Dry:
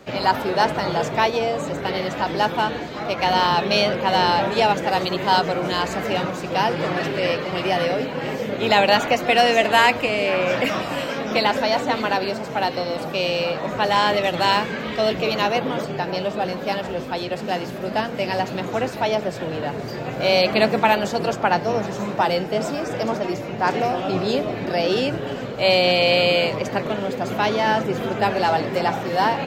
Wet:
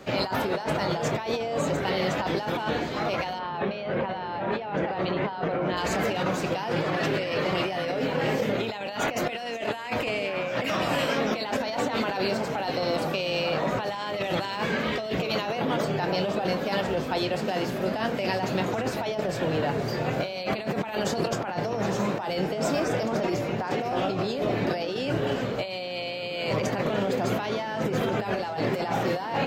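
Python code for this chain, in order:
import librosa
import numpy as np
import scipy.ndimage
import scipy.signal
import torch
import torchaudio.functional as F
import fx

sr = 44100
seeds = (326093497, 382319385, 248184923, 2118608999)

y = fx.doubler(x, sr, ms=26.0, db=-12.0)
y = fx.over_compress(y, sr, threshold_db=-25.0, ratio=-1.0)
y = fx.lowpass(y, sr, hz=2300.0, slope=12, at=(3.38, 5.76), fade=0.02)
y = F.gain(torch.from_numpy(y), -3.0).numpy()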